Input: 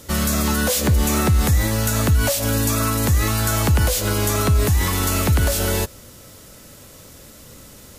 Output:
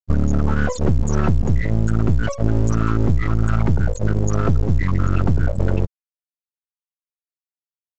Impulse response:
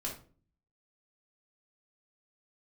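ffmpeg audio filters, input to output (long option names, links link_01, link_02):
-filter_complex "[0:a]afftfilt=real='re*gte(hypot(re,im),0.2)':imag='im*gte(hypot(re,im),0.2)':win_size=1024:overlap=0.75,bass=frequency=250:gain=7,treble=frequency=4000:gain=1,acrossover=split=2100[link_01][link_02];[link_01]acompressor=threshold=-17dB:ratio=12[link_03];[link_03][link_02]amix=inputs=2:normalize=0,aeval=exprs='max(val(0),0)':channel_layout=same,volume=7dB" -ar 16000 -c:a pcm_mulaw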